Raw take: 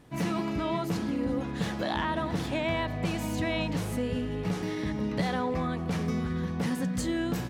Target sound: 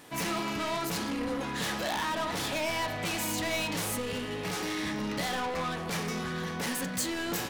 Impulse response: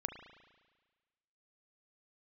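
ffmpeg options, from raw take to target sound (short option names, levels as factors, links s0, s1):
-filter_complex "[0:a]asplit=2[s0][s1];[s1]highpass=f=720:p=1,volume=14.1,asoftclip=type=tanh:threshold=0.133[s2];[s0][s2]amix=inputs=2:normalize=0,lowpass=f=6100:p=1,volume=0.501,aemphasis=mode=production:type=50kf[s3];[1:a]atrim=start_sample=2205,atrim=end_sample=4410,asetrate=52920,aresample=44100[s4];[s3][s4]afir=irnorm=-1:irlink=0,volume=0.531"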